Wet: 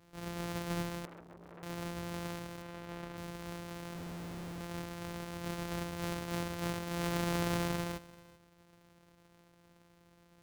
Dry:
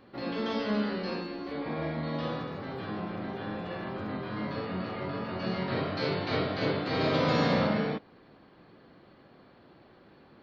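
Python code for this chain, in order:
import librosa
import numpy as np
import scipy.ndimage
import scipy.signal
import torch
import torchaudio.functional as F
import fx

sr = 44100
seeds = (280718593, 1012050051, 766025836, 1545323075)

y = np.r_[np.sort(x[:len(x) // 256 * 256].reshape(-1, 256), axis=1).ravel(), x[len(x) // 256 * 256:]]
y = fx.bass_treble(y, sr, bass_db=-3, treble_db=-8, at=(2.62, 3.17))
y = fx.schmitt(y, sr, flips_db=-44.5, at=(3.95, 4.61))
y = y + 10.0 ** (-20.5 / 20.0) * np.pad(y, (int(387 * sr / 1000.0), 0))[:len(y)]
y = fx.transformer_sat(y, sr, knee_hz=2400.0, at=(1.05, 1.63))
y = F.gain(torch.from_numpy(y), -7.5).numpy()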